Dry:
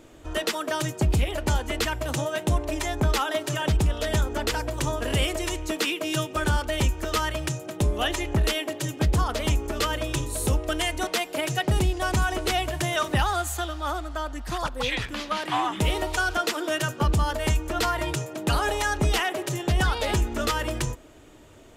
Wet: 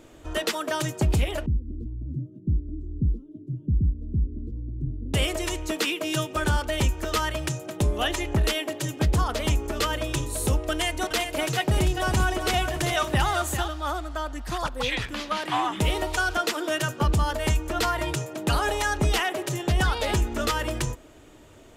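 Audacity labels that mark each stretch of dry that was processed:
1.460000	5.140000	inverse Chebyshev low-pass filter stop band from 700 Hz, stop band 50 dB
10.710000	13.680000	single-tap delay 394 ms −7.5 dB

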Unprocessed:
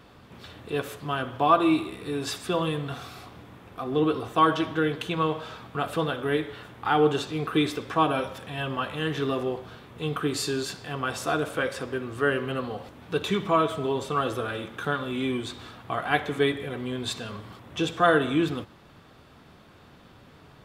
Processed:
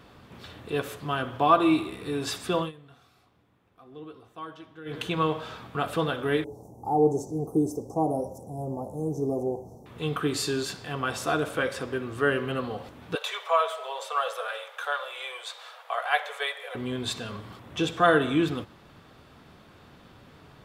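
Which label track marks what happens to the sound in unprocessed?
2.590000	4.980000	duck −19.5 dB, fades 0.13 s
6.440000	9.860000	Chebyshev band-stop filter 840–5,900 Hz, order 4
13.150000	16.750000	Butterworth high-pass 490 Hz 72 dB per octave

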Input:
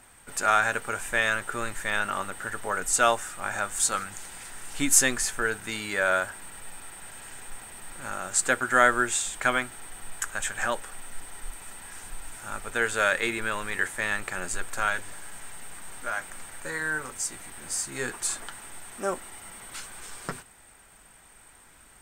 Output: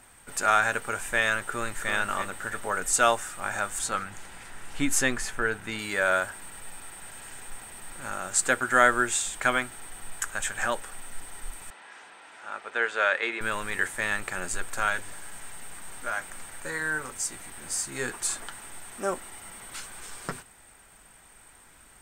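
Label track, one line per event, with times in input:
1.440000	1.910000	delay throw 330 ms, feedback 40%, level −7.5 dB
3.790000	5.790000	bass and treble bass +2 dB, treble −8 dB
11.700000	13.410000	band-pass filter 410–3,600 Hz

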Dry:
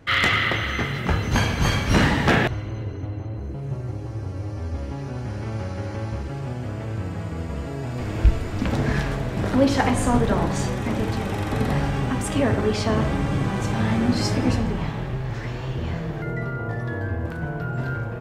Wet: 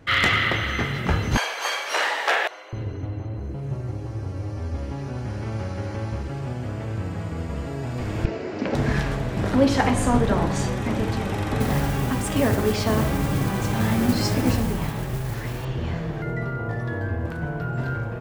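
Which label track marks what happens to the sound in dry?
1.370000	2.730000	inverse Chebyshev high-pass filter stop band from 200 Hz, stop band 50 dB
8.250000	8.750000	loudspeaker in its box 220–5,700 Hz, peaks and dips at 390 Hz +8 dB, 580 Hz +5 dB, 1,200 Hz −4 dB, 3,500 Hz −7 dB
11.600000	15.650000	noise that follows the level under the signal 18 dB

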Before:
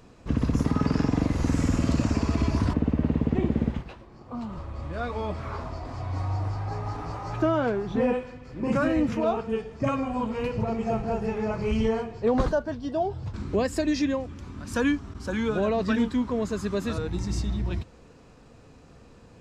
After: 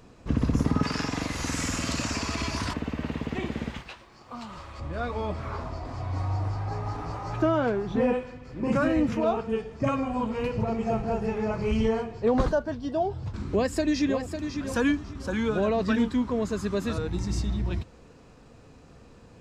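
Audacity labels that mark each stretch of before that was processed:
0.830000	4.800000	tilt shelving filter lows −9 dB, about 870 Hz
13.460000	14.460000	delay throw 550 ms, feedback 25%, level −8 dB

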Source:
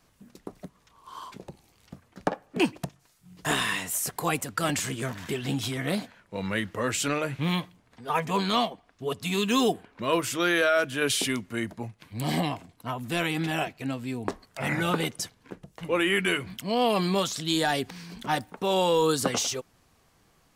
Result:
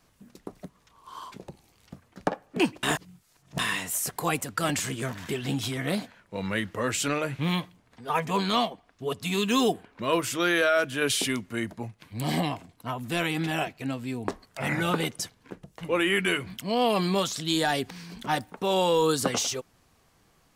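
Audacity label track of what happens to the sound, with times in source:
2.830000	3.590000	reverse

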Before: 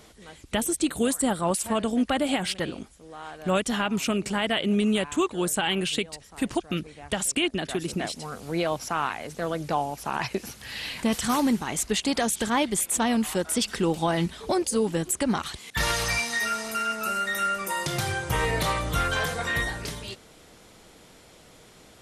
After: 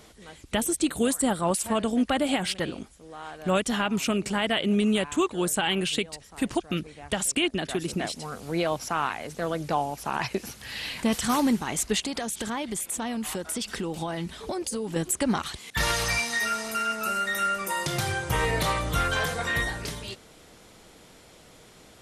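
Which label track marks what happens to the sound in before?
12.040000	14.960000	downward compressor, threshold −27 dBFS

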